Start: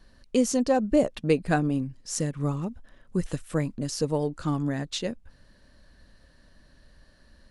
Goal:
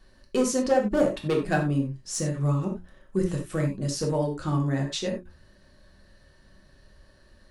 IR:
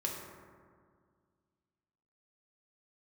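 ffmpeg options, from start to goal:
-filter_complex "[0:a]volume=7.08,asoftclip=hard,volume=0.141,bandreject=f=60:t=h:w=6,bandreject=f=120:t=h:w=6,bandreject=f=180:t=h:w=6,bandreject=f=240:t=h:w=6,bandreject=f=300:t=h:w=6,bandreject=f=360:t=h:w=6[s0];[1:a]atrim=start_sample=2205,atrim=end_sample=4410[s1];[s0][s1]afir=irnorm=-1:irlink=0"

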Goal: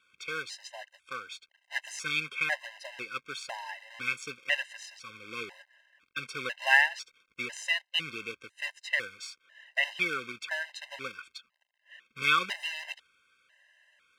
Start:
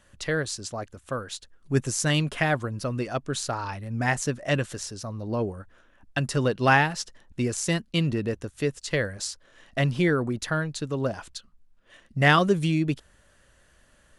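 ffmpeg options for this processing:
-af "acrusher=bits=2:mode=log:mix=0:aa=0.000001,bandpass=f=2300:t=q:w=2.3:csg=0,afftfilt=real='re*gt(sin(2*PI*1*pts/sr)*(1-2*mod(floor(b*sr/1024/530),2)),0)':imag='im*gt(sin(2*PI*1*pts/sr)*(1-2*mod(floor(b*sr/1024/530),2)),0)':win_size=1024:overlap=0.75,volume=2.11"

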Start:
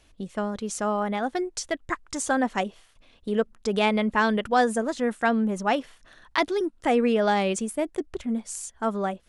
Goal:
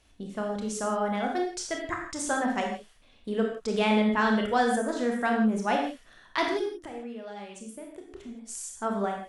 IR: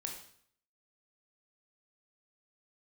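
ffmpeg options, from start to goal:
-filter_complex "[0:a]asplit=3[s0][s1][s2];[s0]afade=t=out:st=6.62:d=0.02[s3];[s1]acompressor=threshold=0.0158:ratio=12,afade=t=in:st=6.62:d=0.02,afade=t=out:st=8.47:d=0.02[s4];[s2]afade=t=in:st=8.47:d=0.02[s5];[s3][s4][s5]amix=inputs=3:normalize=0[s6];[1:a]atrim=start_sample=2205,afade=t=out:st=0.19:d=0.01,atrim=end_sample=8820,asetrate=34839,aresample=44100[s7];[s6][s7]afir=irnorm=-1:irlink=0,volume=0.75"

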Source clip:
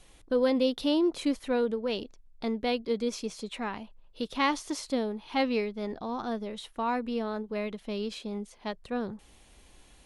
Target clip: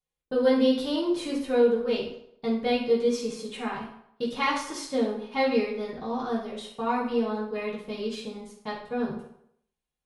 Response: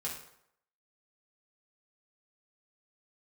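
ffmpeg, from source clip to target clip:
-filter_complex "[0:a]agate=range=0.02:threshold=0.00631:ratio=16:detection=peak[s0];[1:a]atrim=start_sample=2205[s1];[s0][s1]afir=irnorm=-1:irlink=0,volume=1.12"

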